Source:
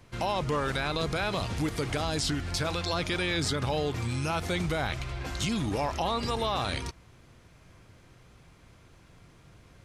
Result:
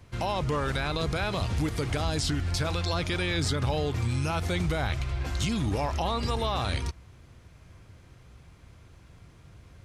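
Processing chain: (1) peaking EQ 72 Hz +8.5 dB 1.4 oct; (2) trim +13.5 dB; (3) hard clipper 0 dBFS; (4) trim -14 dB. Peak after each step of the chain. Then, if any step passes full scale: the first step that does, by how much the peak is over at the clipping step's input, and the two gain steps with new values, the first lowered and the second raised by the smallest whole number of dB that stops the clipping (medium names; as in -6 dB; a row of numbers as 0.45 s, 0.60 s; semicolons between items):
-15.5 dBFS, -2.0 dBFS, -2.0 dBFS, -16.0 dBFS; nothing clips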